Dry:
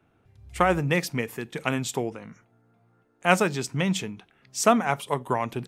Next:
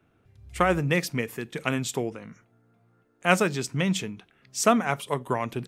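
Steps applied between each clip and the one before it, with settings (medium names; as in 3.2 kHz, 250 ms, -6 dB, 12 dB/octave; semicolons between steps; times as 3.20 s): peaking EQ 840 Hz -4.5 dB 0.5 oct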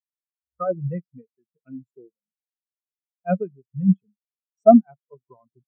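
spectral contrast expander 4:1; trim +2.5 dB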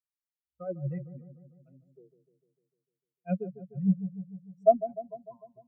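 phase shifter stages 4, 0.37 Hz, lowest notch 220–1100 Hz; feedback echo behind a low-pass 150 ms, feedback 60%, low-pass 660 Hz, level -11 dB; trim -6.5 dB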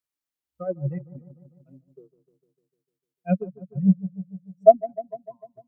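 peaking EQ 290 Hz +8.5 dB 0.25 oct; transient shaper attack +4 dB, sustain -7 dB; trim +4 dB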